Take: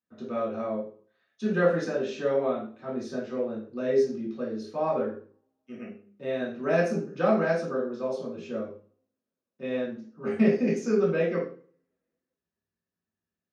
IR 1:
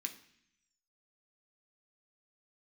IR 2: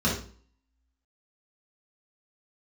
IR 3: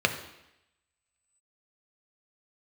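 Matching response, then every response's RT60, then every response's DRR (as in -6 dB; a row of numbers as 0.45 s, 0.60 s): 2; 0.65 s, 0.45 s, 0.85 s; 4.0 dB, -7.0 dB, 5.5 dB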